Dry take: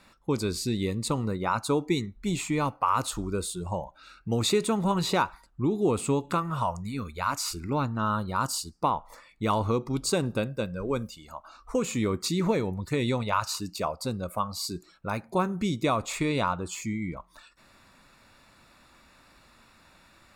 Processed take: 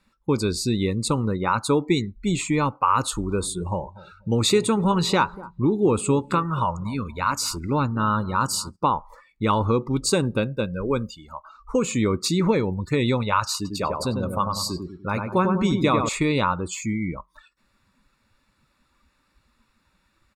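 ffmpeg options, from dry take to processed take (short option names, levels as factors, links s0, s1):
-filter_complex "[0:a]asplit=3[s0][s1][s2];[s0]afade=t=out:st=3.26:d=0.02[s3];[s1]asplit=2[s4][s5];[s5]adelay=240,lowpass=f=1300:p=1,volume=0.133,asplit=2[s6][s7];[s7]adelay=240,lowpass=f=1300:p=1,volume=0.38,asplit=2[s8][s9];[s9]adelay=240,lowpass=f=1300:p=1,volume=0.38[s10];[s4][s6][s8][s10]amix=inputs=4:normalize=0,afade=t=in:st=3.26:d=0.02,afade=t=out:st=8.75:d=0.02[s11];[s2]afade=t=in:st=8.75:d=0.02[s12];[s3][s11][s12]amix=inputs=3:normalize=0,asettb=1/sr,asplit=3[s13][s14][s15];[s13]atrim=end=13.554[s16];[s14]atrim=start=13.55:end=16.09,asetpts=PTS-STARTPTS,afade=t=in:d=0.004:c=qsin,afade=t=out:st=2.536:d=0.004:c=qsin,asplit=2[s17][s18];[s18]adelay=98,lowpass=f=2000:p=1,volume=0.631,asplit=2[s19][s20];[s20]adelay=98,lowpass=f=2000:p=1,volume=0.45,asplit=2[s21][s22];[s22]adelay=98,lowpass=f=2000:p=1,volume=0.45,asplit=2[s23][s24];[s24]adelay=98,lowpass=f=2000:p=1,volume=0.45,asplit=2[s25][s26];[s26]adelay=98,lowpass=f=2000:p=1,volume=0.45,asplit=2[s27][s28];[s28]adelay=98,lowpass=f=2000:p=1,volume=0.45[s29];[s17][s19][s21][s23][s25][s27][s29]amix=inputs=7:normalize=0,atrim=end_sample=112014[s30];[s15]atrim=start=16.086[s31];[s16][s30]acrossfade=d=0.004:c1=hsin:c2=qsin[s32];[s32][s31]acrossfade=d=0.004:c1=qsin:c2=hsin,afftdn=nr=16:nf=-46,equalizer=f=690:w=7.9:g=-12,volume=1.88"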